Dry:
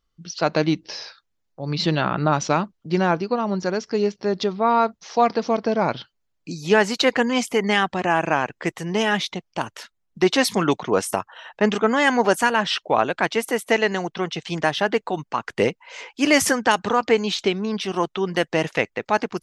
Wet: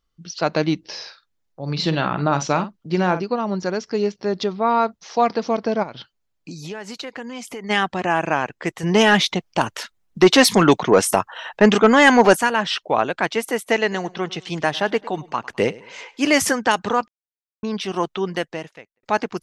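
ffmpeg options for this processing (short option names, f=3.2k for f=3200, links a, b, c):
-filter_complex "[0:a]asettb=1/sr,asplit=3[a][b][c];[a]atrim=end=0.854[d];[b]atrim=start=0.85:end=3.24,asetpts=PTS-STARTPTS,afade=t=in:d=0.004:c=qsin,afade=t=out:st=2.386:d=0.004:c=qsin,asplit=2[e][f];[f]adelay=49,volume=-11dB[g];[e][g]amix=inputs=2:normalize=0,atrim=end_sample=105399[h];[c]atrim=start=3.236[i];[d][h]acrossfade=d=0.004:c1=hsin:c2=qsin[j];[j][i]acrossfade=d=0.004:c1=qsin:c2=hsin,asplit=3[k][l][m];[k]afade=t=out:st=5.82:d=0.02[n];[l]acompressor=threshold=-30dB:ratio=5:attack=3.2:release=140:knee=1:detection=peak,afade=t=in:st=5.82:d=0.02,afade=t=out:st=7.69:d=0.02[o];[m]afade=t=in:st=7.69:d=0.02[p];[n][o][p]amix=inputs=3:normalize=0,asettb=1/sr,asplit=3[q][r][s];[q]atrim=end=8.834[t];[r]atrim=start=8.83:end=12.37,asetpts=PTS-STARTPTS,afade=t=in:d=0.004:c=qsin,afade=t=out:st=3.536:d=0.004:c=qsin,acontrast=90[u];[s]atrim=start=12.366[v];[t][u]acrossfade=d=0.004:c1=hsin:c2=qsin[w];[w][v]acrossfade=d=0.004:c1=qsin:c2=hsin,asettb=1/sr,asplit=3[x][y][z];[x]atrim=end=13.814[aa];[y]atrim=start=13.81:end=16.26,asetpts=PTS-STARTPTS,afade=t=in:d=0.004:c=qsin,afade=t=out:st=2.446:d=0.004:c=qsin,aecho=1:1:104|208|312:0.0944|0.033|0.0116,atrim=end_sample=108045[ab];[z]atrim=start=16.256[ac];[aa][ab]acrossfade=d=0.004:c1=hsin:c2=qsin[ad];[ad][ac]acrossfade=d=0.004:c1=qsin:c2=hsin,asplit=4[ae][af][ag][ah];[ae]atrim=end=17.08,asetpts=PTS-STARTPTS,afade=t=out:st=17.076:d=0.004:c=hsin[ai];[af]atrim=start=17.08:end=17.63,asetpts=PTS-STARTPTS,volume=0[aj];[ag]atrim=start=17.63:end=19.03,asetpts=PTS-STARTPTS,afade=t=in:d=0.004:c=hsin,afade=t=out:st=0.64:d=0.76:c=qua[ak];[ah]atrim=start=19.03,asetpts=PTS-STARTPTS,afade=t=in:d=0.004:c=hsin[al];[ai][aj][ak][al]concat=n=4:v=0:a=1"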